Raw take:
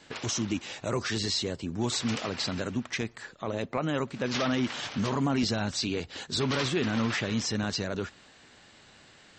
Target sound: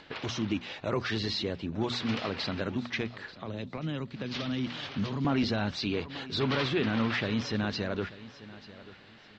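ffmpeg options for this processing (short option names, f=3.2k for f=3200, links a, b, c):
-filter_complex "[0:a]bandreject=f=60:t=h:w=6,bandreject=f=120:t=h:w=6,bandreject=f=180:t=h:w=6,bandreject=f=240:t=h:w=6,asplit=2[a][b];[b]aecho=0:1:887|1774:0.133|0.0333[c];[a][c]amix=inputs=2:normalize=0,asettb=1/sr,asplit=3[d][e][f];[d]atrim=end=3.324[g];[e]atrim=start=3.32:end=5.25,asetpts=PTS-STARTPTS,afade=t=in:d=0.004:c=qsin,afade=t=out:st=1.926:d=0.004:c=qsin,acrossover=split=260|3000[h][i][j];[i]acompressor=threshold=-40dB:ratio=6[k];[h][k][j]amix=inputs=3:normalize=0[l];[f]atrim=start=5.246[m];[g][l]acrossfade=d=0.004:c1=hsin:c2=qsin[n];[n][m]acrossfade=d=0.004:c1=qsin:c2=hsin,lowpass=f=4.3k:w=0.5412,lowpass=f=4.3k:w=1.3066,acompressor=mode=upward:threshold=-50dB:ratio=2.5"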